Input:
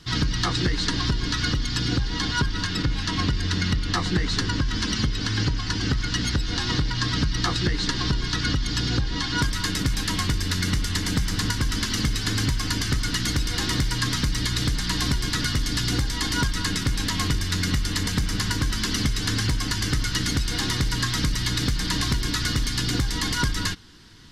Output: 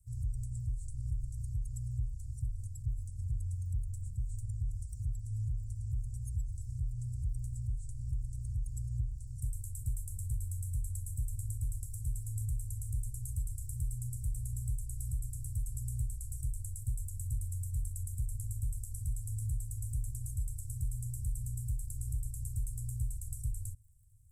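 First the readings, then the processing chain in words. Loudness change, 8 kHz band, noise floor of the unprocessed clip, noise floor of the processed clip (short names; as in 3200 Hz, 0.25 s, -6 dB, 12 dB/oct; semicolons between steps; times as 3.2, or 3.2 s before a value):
-14.5 dB, -16.0 dB, -29 dBFS, -43 dBFS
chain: crackle 37/s -43 dBFS; Chebyshev band-stop 120–7900 Hz, order 5; gain -8.5 dB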